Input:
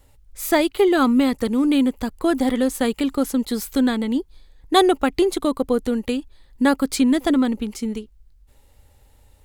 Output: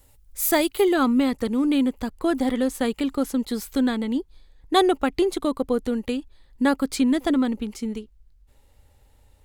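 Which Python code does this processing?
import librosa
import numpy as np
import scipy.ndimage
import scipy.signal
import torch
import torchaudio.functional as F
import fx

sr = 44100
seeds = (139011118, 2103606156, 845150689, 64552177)

y = fx.high_shelf(x, sr, hz=6900.0, db=fx.steps((0.0, 10.5), (0.92, -3.5)))
y = F.gain(torch.from_numpy(y), -3.0).numpy()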